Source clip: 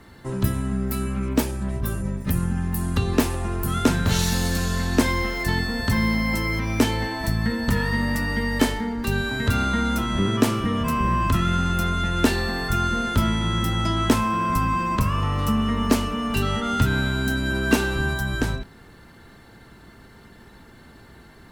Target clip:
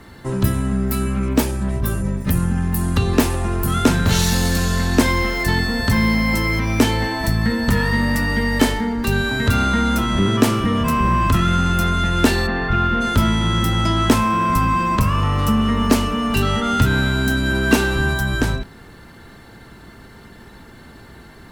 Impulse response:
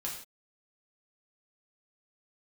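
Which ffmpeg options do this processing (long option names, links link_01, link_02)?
-filter_complex "[0:a]asplit=3[link_01][link_02][link_03];[link_01]afade=type=out:start_time=12.46:duration=0.02[link_04];[link_02]lowpass=frequency=3200:width=0.5412,lowpass=frequency=3200:width=1.3066,afade=type=in:start_time=12.46:duration=0.02,afade=type=out:start_time=13:duration=0.02[link_05];[link_03]afade=type=in:start_time=13:duration=0.02[link_06];[link_04][link_05][link_06]amix=inputs=3:normalize=0,asplit=2[link_07][link_08];[link_08]volume=22.5dB,asoftclip=hard,volume=-22.5dB,volume=-9dB[link_09];[link_07][link_09]amix=inputs=2:normalize=0,volume=3dB"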